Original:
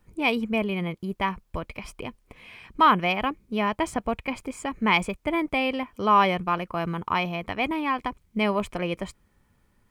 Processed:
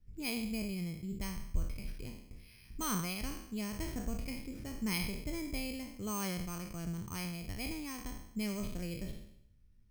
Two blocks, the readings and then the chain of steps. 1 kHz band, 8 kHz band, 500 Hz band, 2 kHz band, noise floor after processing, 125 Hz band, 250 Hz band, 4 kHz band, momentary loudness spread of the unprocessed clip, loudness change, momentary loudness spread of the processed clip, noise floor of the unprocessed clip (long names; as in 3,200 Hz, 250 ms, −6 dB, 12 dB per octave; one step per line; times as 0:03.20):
−24.0 dB, +3.5 dB, −17.5 dB, −17.0 dB, −60 dBFS, −6.5 dB, −10.0 dB, −11.5 dB, 16 LU, −13.5 dB, 9 LU, −67 dBFS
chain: peak hold with a decay on every bin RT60 0.72 s
decimation without filtering 6×
guitar amp tone stack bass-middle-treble 10-0-1
level +6.5 dB